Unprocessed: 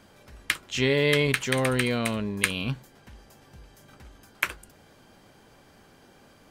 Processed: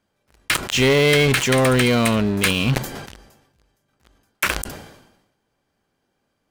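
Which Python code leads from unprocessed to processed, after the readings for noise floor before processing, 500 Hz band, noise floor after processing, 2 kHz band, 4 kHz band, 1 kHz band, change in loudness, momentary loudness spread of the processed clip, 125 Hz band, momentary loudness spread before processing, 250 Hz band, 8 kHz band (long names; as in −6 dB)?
−56 dBFS, +8.0 dB, −73 dBFS, +6.5 dB, +8.5 dB, +10.0 dB, +8.0 dB, 12 LU, +8.5 dB, 9 LU, +8.5 dB, +9.0 dB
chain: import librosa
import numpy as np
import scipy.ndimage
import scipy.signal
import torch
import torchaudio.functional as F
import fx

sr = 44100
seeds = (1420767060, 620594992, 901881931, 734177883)

y = fx.leveller(x, sr, passes=5)
y = fx.sustainer(y, sr, db_per_s=60.0)
y = y * 10.0 ** (-7.5 / 20.0)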